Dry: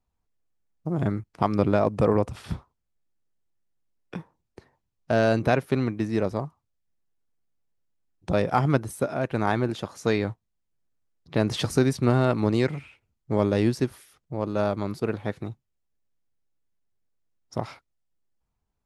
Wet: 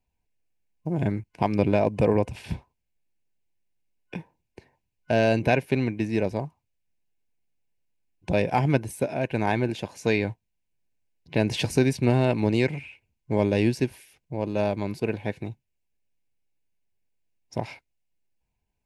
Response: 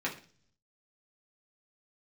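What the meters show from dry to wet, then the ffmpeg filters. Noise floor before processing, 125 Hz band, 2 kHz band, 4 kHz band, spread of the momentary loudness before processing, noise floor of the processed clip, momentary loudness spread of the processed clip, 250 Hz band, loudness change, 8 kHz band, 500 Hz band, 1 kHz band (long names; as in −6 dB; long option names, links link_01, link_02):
−79 dBFS, 0.0 dB, +1.5 dB, +1.0 dB, 15 LU, −79 dBFS, 15 LU, 0.0 dB, 0.0 dB, 0.0 dB, 0.0 dB, −1.0 dB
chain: -af "superequalizer=10b=0.251:12b=2.24"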